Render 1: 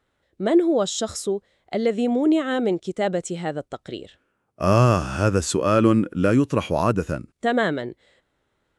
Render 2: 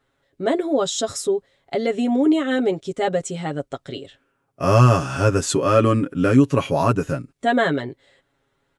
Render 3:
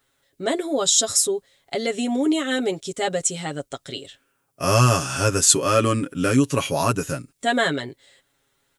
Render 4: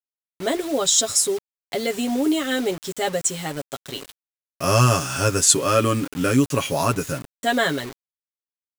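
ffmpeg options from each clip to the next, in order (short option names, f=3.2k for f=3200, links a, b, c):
-af "aecho=1:1:7.3:0.82"
-af "crystalizer=i=5:c=0,volume=-4dB"
-af "acrusher=bits=5:mix=0:aa=0.000001"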